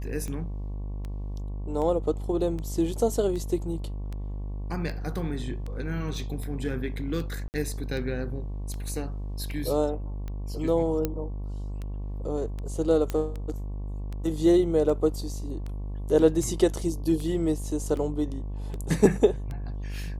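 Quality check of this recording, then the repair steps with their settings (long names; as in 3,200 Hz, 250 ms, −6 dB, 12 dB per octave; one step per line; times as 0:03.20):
mains buzz 50 Hz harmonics 23 −33 dBFS
scratch tick 78 rpm −24 dBFS
0:07.48–0:07.54: drop-out 59 ms
0:11.05: click −13 dBFS
0:13.10: click −16 dBFS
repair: click removal
hum removal 50 Hz, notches 23
repair the gap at 0:07.48, 59 ms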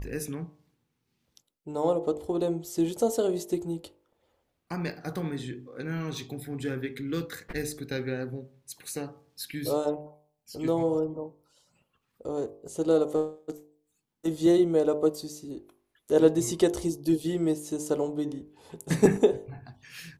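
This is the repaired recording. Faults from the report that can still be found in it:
none of them is left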